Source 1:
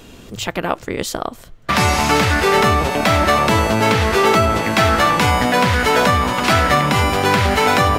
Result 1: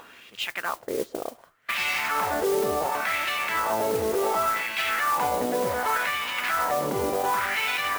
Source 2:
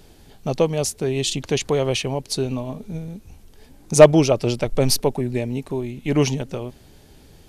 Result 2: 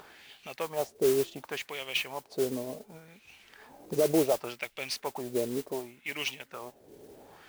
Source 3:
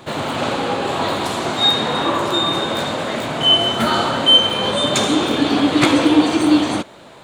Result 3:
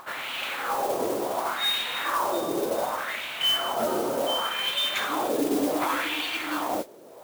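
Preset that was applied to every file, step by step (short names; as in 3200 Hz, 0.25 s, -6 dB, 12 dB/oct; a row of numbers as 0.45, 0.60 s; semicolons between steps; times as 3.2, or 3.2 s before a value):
wah 0.68 Hz 410–2700 Hz, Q 2.4; upward compressor, threshold -42 dBFS; limiter -17 dBFS; modulation noise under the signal 13 dB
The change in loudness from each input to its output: -10.0, -11.5, -10.5 LU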